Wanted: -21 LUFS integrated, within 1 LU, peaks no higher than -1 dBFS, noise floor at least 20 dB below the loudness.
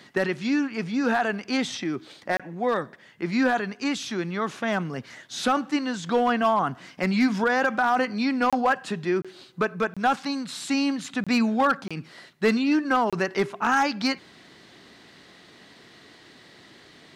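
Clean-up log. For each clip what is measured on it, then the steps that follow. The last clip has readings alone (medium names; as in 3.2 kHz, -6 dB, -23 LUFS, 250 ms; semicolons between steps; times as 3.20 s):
clipped samples 0.4%; clipping level -14.5 dBFS; dropouts 7; longest dropout 26 ms; loudness -25.0 LUFS; peak level -14.5 dBFS; loudness target -21.0 LUFS
-> clip repair -14.5 dBFS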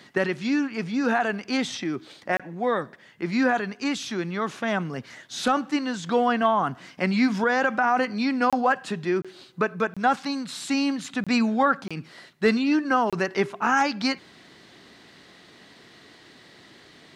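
clipped samples 0.0%; dropouts 7; longest dropout 26 ms
-> interpolate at 2.37/8.50/9.22/9.94/11.24/11.88/13.10 s, 26 ms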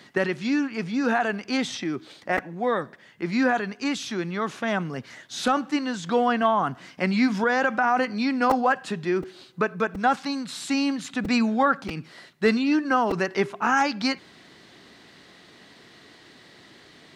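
dropouts 0; loudness -25.0 LUFS; peak level -7.5 dBFS; loudness target -21.0 LUFS
-> trim +4 dB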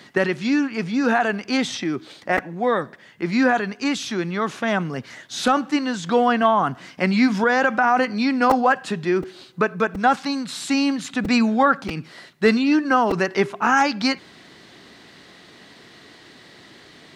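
loudness -21.0 LUFS; peak level -3.5 dBFS; noise floor -48 dBFS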